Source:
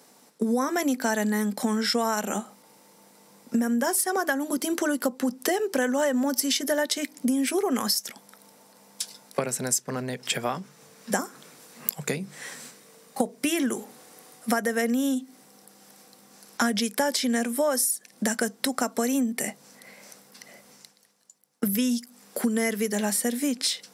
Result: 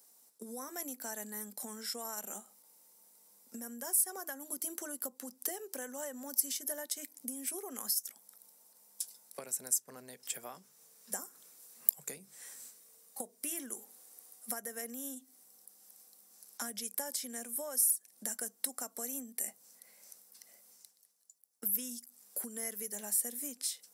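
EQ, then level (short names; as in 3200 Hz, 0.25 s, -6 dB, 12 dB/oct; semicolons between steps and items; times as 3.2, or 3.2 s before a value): RIAA curve recording; dynamic EQ 4300 Hz, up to -4 dB, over -35 dBFS, Q 1.1; bell 2500 Hz -6 dB 2.5 oct; -15.5 dB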